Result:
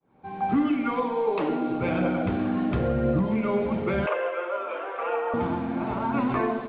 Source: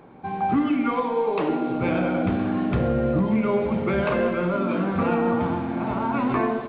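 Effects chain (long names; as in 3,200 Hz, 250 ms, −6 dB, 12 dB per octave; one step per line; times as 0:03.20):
fade in at the beginning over 0.51 s
0:04.06–0:05.34: elliptic band-pass filter 460–3,100 Hz, stop band 40 dB
phase shifter 0.97 Hz, delay 4.6 ms, feedback 25%
level −2.5 dB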